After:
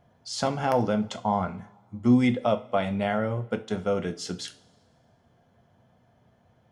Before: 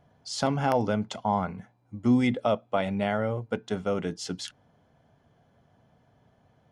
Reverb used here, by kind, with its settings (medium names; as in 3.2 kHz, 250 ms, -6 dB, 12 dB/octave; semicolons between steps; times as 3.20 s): two-slope reverb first 0.31 s, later 1.7 s, from -21 dB, DRR 7 dB